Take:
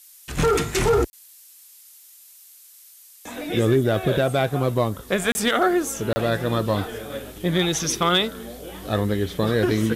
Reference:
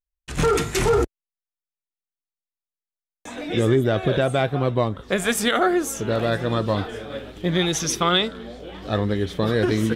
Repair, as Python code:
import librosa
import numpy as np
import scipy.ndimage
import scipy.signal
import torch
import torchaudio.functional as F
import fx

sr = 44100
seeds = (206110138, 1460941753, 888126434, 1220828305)

y = fx.fix_declip(x, sr, threshold_db=-11.0)
y = fx.fix_interpolate(y, sr, at_s=(1.1, 5.32, 6.13), length_ms=30.0)
y = fx.noise_reduce(y, sr, print_start_s=1.35, print_end_s=1.85, reduce_db=30.0)